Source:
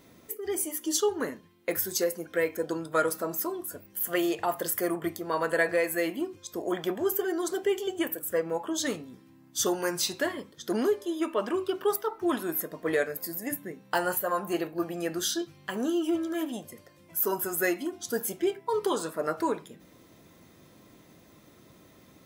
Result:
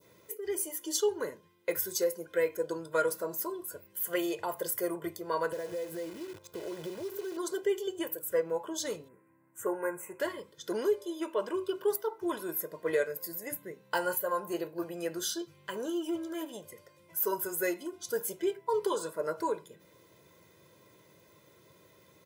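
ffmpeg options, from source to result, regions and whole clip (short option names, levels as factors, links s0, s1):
-filter_complex "[0:a]asettb=1/sr,asplit=3[s0][s1][s2];[s0]atrim=end=5.524[s3];[s1]atrim=start=5.52:end=7.37,asetpts=PTS-STARTPTS,afade=t=in:d=0.004:c=qsin,afade=t=out:st=1.846:d=0.004:c=qsin,tiltshelf=f=1200:g=9,acompressor=threshold=0.0251:ratio=6:attack=3.2:release=140:knee=1:detection=peak,acrusher=bits=8:dc=4:mix=0:aa=0.000001[s4];[s2]atrim=start=7.366[s5];[s3][s4]acrossfade=d=0.004:c1=hsin:c2=qsin[s6];[s6][s5]acrossfade=d=0.004:c1=qsin:c2=hsin,asettb=1/sr,asplit=3[s7][s8][s9];[s7]atrim=end=9.084[s10];[s8]atrim=start=9.08:end=10.2,asetpts=PTS-STARTPTS,afade=t=in:d=0.004:c=qsin,afade=t=out:st=1.116:d=0.004:c=qsin,asuperstop=centerf=4300:order=8:qfactor=0.8,bass=f=250:g=-7,treble=f=4000:g=-7[s11];[s9]atrim=start=10.196[s12];[s10][s11]acrossfade=d=0.004:c1=hsin:c2=qsin[s13];[s13][s12]acrossfade=d=0.004:c1=qsin:c2=hsin,highpass=110,aecho=1:1:2:0.69,adynamicequalizer=threshold=0.00708:dfrequency=2100:dqfactor=0.72:tfrequency=2100:tqfactor=0.72:attack=5:release=100:ratio=0.375:range=3:mode=cutabove:tftype=bell,volume=0.562"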